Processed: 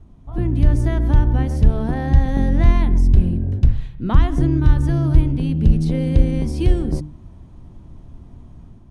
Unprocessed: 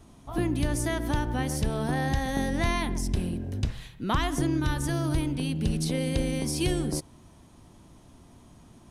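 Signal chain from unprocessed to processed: AGC gain up to 6 dB; RIAA curve playback; notches 50/100/150/200/250/300 Hz; gain -5 dB

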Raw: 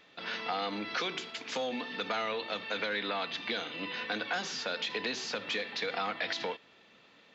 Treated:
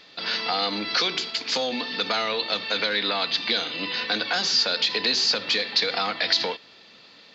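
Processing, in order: bell 4600 Hz +14.5 dB 0.55 oct; gain +6.5 dB

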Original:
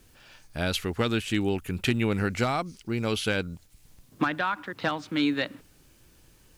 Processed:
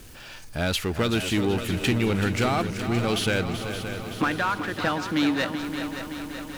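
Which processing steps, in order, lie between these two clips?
power-law curve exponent 0.7; multi-head echo 0.19 s, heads second and third, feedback 66%, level -10.5 dB; gain -1 dB

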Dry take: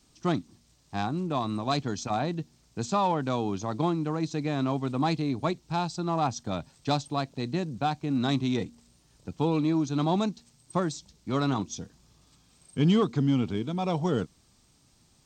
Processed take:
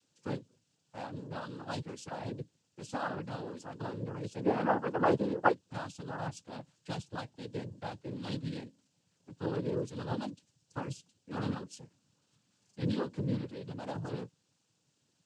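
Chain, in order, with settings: 4.4–5.52 band shelf 680 Hz +14 dB 2.7 oct; flange 0.4 Hz, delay 5.7 ms, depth 1.6 ms, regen +51%; noise vocoder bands 8; gain -7 dB

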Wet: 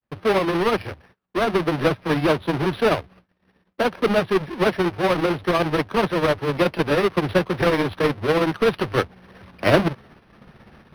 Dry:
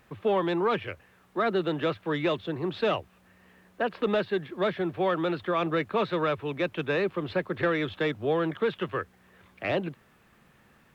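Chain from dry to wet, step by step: half-waves squared off; vocal rider within 4 dB 0.5 s; gate -52 dBFS, range -29 dB; grains 0.11 s, grains 16/s, spray 11 ms, pitch spread up and down by 0 st; decimation joined by straight lines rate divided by 6×; gain +6 dB

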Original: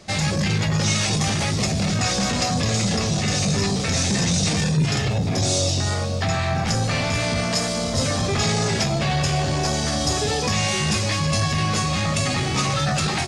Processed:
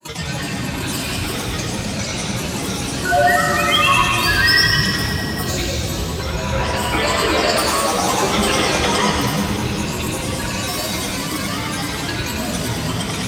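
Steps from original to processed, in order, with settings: spectral gain 6.52–9.08, 260–4800 Hz +8 dB; HPF 70 Hz; painted sound rise, 3.02–4.75, 870–3300 Hz -16 dBFS; ripple EQ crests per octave 1.4, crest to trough 13 dB; grains, pitch spread up and down by 12 st; on a send: split-band echo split 310 Hz, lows 0.348 s, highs 0.1 s, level -7 dB; on the sum: plate-style reverb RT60 3.2 s, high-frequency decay 0.95×, DRR 1.5 dB; gain -4.5 dB

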